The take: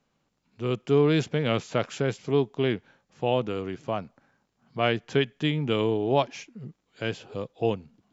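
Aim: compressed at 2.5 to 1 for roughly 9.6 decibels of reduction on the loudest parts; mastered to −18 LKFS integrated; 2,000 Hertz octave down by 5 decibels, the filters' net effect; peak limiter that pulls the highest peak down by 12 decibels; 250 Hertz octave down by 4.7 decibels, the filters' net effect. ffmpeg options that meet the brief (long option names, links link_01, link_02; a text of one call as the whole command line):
ffmpeg -i in.wav -af "equalizer=frequency=250:width_type=o:gain=-6.5,equalizer=frequency=2000:width_type=o:gain=-6.5,acompressor=threshold=-34dB:ratio=2.5,volume=24.5dB,alimiter=limit=-5.5dB:level=0:latency=1" out.wav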